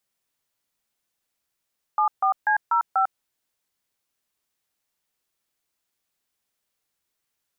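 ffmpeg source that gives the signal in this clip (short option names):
-f lavfi -i "aevalsrc='0.1*clip(min(mod(t,0.244),0.099-mod(t,0.244))/0.002,0,1)*(eq(floor(t/0.244),0)*(sin(2*PI*852*mod(t,0.244))+sin(2*PI*1209*mod(t,0.244)))+eq(floor(t/0.244),1)*(sin(2*PI*770*mod(t,0.244))+sin(2*PI*1209*mod(t,0.244)))+eq(floor(t/0.244),2)*(sin(2*PI*852*mod(t,0.244))+sin(2*PI*1633*mod(t,0.244)))+eq(floor(t/0.244),3)*(sin(2*PI*941*mod(t,0.244))+sin(2*PI*1336*mod(t,0.244)))+eq(floor(t/0.244),4)*(sin(2*PI*770*mod(t,0.244))+sin(2*PI*1336*mod(t,0.244))))':d=1.22:s=44100"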